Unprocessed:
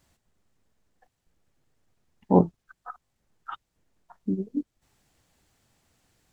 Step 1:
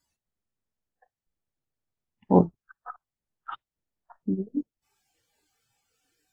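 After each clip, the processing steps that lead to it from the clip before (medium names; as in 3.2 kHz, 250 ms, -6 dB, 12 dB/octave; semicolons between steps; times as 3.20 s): spectral noise reduction 17 dB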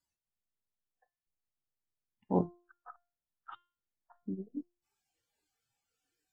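feedback comb 350 Hz, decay 0.39 s, harmonics all, mix 60%; trim -3.5 dB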